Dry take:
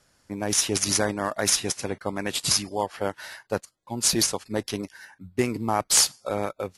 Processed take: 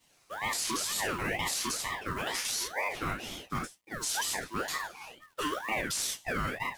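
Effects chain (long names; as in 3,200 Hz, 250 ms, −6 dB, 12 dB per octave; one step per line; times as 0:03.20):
reverb whose tail is shaped and stops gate 120 ms falling, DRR −8 dB
log-companded quantiser 6 bits
Butterworth high-pass 330 Hz 36 dB per octave
brickwall limiter −14 dBFS, peak gain reduction 15 dB
ring modulator whose carrier an LFO sweeps 1,100 Hz, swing 40%, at 2.1 Hz
level −6.5 dB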